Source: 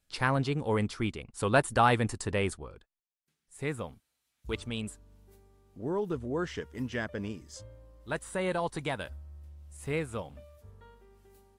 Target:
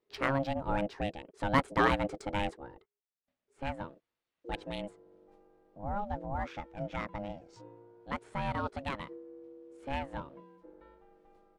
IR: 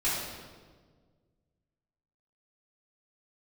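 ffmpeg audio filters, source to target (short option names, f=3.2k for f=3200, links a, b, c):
-af "adynamicsmooth=sensitivity=3.5:basefreq=3k,aeval=exprs='val(0)*sin(2*PI*410*n/s)':c=same"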